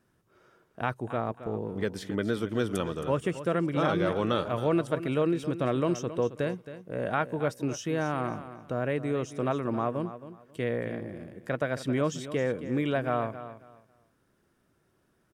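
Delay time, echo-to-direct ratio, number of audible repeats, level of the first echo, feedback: 0.27 s, -13.0 dB, 2, -13.0 dB, 23%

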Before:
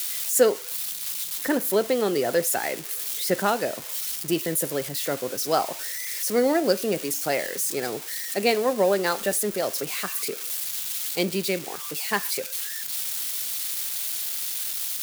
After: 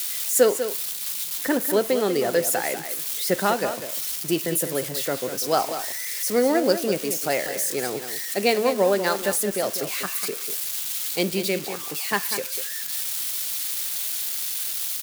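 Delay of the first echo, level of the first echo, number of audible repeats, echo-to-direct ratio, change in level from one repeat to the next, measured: 0.196 s, -10.0 dB, 1, -10.0 dB, no steady repeat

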